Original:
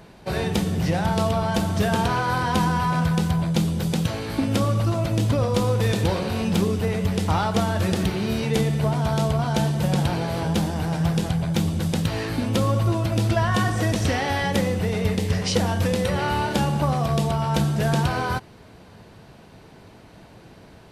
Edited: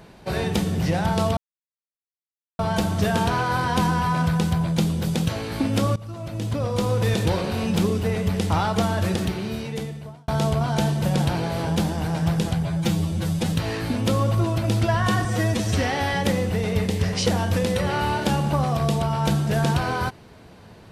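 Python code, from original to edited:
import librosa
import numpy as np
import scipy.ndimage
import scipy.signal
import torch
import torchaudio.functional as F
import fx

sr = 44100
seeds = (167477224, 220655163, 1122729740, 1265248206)

y = fx.edit(x, sr, fx.insert_silence(at_s=1.37, length_s=1.22),
    fx.fade_in_from(start_s=4.74, length_s=1.08, floor_db=-19.0),
    fx.fade_out_span(start_s=7.78, length_s=1.28),
    fx.stretch_span(start_s=11.41, length_s=0.6, factor=1.5),
    fx.stretch_span(start_s=13.73, length_s=0.38, factor=1.5), tone=tone)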